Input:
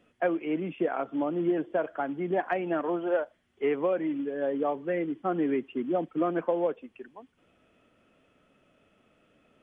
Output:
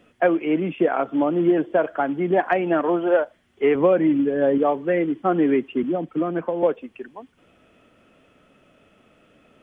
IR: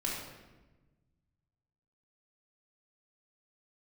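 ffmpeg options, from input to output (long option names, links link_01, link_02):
-filter_complex "[0:a]asettb=1/sr,asplit=3[link_01][link_02][link_03];[link_01]atrim=end=3.754[link_04];[link_02]atrim=start=3.75:end=4.58,asetpts=PTS-STARTPTS,afade=type=in:duration=0.004:curve=qsin,afade=type=out:start_time=0.826:duration=0.004:curve=qsin,equalizer=frequency=62:width=0.35:gain=11[link_05];[link_03]atrim=start=4.576[link_06];[link_04][link_05]acrossfade=duration=0.004:curve1=hsin:curve2=qsin[link_07];[link_07][link_06]acrossfade=duration=0.004:curve1=qsin:curve2=hsin,asettb=1/sr,asplit=3[link_08][link_09][link_10];[link_08]atrim=end=5.834[link_11];[link_09]atrim=start=5.83:end=6.63,asetpts=PTS-STARTPTS,afade=type=in:duration=0.004:curve=qsin,afade=type=out:start_time=0.796:duration=0.004:curve=qsin,acrossover=split=230[link_12][link_13];[link_13]acompressor=threshold=-33dB:ratio=3[link_14];[link_12][link_14]amix=inputs=2:normalize=0[link_15];[link_10]atrim=start=6.626[link_16];[link_11][link_15]acrossfade=duration=0.004:curve1=hsin:curve2=qsin[link_17];[link_17][link_16]acrossfade=duration=0.004:curve1=qsin:curve2=hsin,volume=8.5dB"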